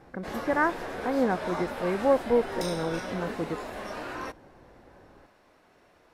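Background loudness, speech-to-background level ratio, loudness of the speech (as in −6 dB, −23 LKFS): −36.0 LKFS, 7.0 dB, −29.0 LKFS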